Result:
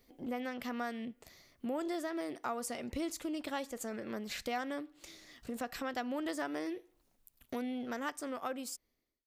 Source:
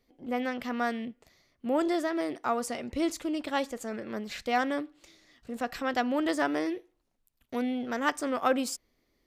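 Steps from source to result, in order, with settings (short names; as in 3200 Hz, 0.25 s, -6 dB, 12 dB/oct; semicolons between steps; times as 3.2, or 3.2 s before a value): ending faded out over 1.45 s; high shelf 8800 Hz +9.5 dB; compressor 2.5:1, threshold -44 dBFS, peak gain reduction 14.5 dB; gain +3.5 dB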